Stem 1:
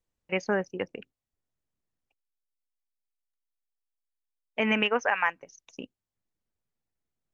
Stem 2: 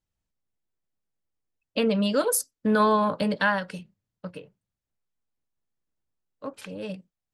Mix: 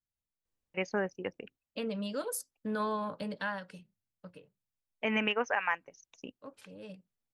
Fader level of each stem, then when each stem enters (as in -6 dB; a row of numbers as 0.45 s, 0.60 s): -5.0 dB, -12.5 dB; 0.45 s, 0.00 s